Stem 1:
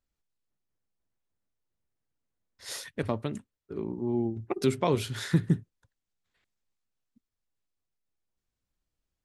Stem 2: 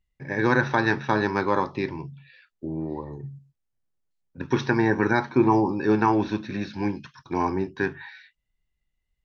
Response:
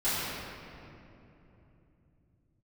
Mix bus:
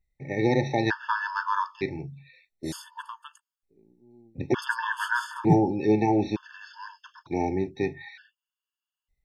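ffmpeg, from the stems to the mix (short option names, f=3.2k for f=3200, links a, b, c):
-filter_complex "[0:a]equalizer=f=240:w=0.62:g=6.5,volume=0dB[a];[1:a]volume=0.5dB,asplit=2[b][c];[c]apad=whole_len=407828[d];[a][d]sidechaingate=range=-30dB:threshold=-41dB:ratio=16:detection=peak[e];[e][b]amix=inputs=2:normalize=0,equalizer=f=220:w=1.5:g=-2.5,afftfilt=real='re*gt(sin(2*PI*0.55*pts/sr)*(1-2*mod(floor(b*sr/1024/890),2)),0)':imag='im*gt(sin(2*PI*0.55*pts/sr)*(1-2*mod(floor(b*sr/1024/890),2)),0)':win_size=1024:overlap=0.75"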